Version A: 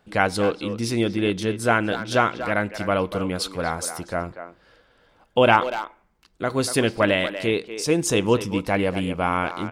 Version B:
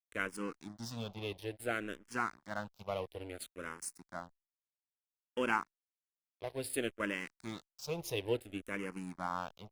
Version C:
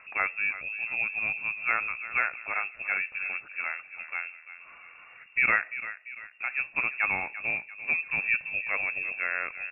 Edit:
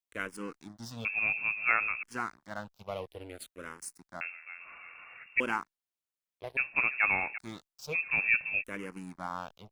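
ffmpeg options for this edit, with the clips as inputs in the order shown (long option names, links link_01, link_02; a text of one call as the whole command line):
ffmpeg -i take0.wav -i take1.wav -i take2.wav -filter_complex "[2:a]asplit=4[link_01][link_02][link_03][link_04];[1:a]asplit=5[link_05][link_06][link_07][link_08][link_09];[link_05]atrim=end=1.052[link_10];[link_01]atrim=start=1.048:end=2.032[link_11];[link_06]atrim=start=2.028:end=4.212[link_12];[link_02]atrim=start=4.208:end=5.402[link_13];[link_07]atrim=start=5.398:end=6.572[link_14];[link_03]atrim=start=6.568:end=7.382[link_15];[link_08]atrim=start=7.378:end=7.96[link_16];[link_04]atrim=start=7.92:end=8.64[link_17];[link_09]atrim=start=8.6[link_18];[link_10][link_11]acrossfade=duration=0.004:curve1=hsin:curve2=hsin[link_19];[link_19][link_12]acrossfade=duration=0.004:curve1=hsin:curve2=hsin[link_20];[link_20][link_13]acrossfade=duration=0.004:curve1=hsin:curve2=hsin[link_21];[link_21][link_14]acrossfade=duration=0.004:curve1=hsin:curve2=hsin[link_22];[link_22][link_15]acrossfade=duration=0.004:curve1=hsin:curve2=hsin[link_23];[link_23][link_16]acrossfade=duration=0.004:curve1=hsin:curve2=hsin[link_24];[link_24][link_17]acrossfade=duration=0.04:curve1=tri:curve2=tri[link_25];[link_25][link_18]acrossfade=duration=0.04:curve1=tri:curve2=tri" out.wav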